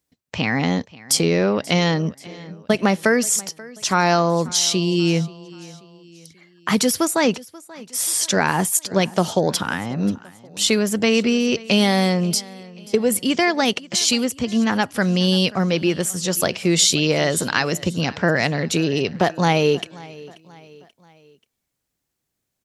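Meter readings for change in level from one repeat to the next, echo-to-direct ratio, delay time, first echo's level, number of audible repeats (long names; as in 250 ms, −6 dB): −6.5 dB, −20.0 dB, 534 ms, −21.0 dB, 3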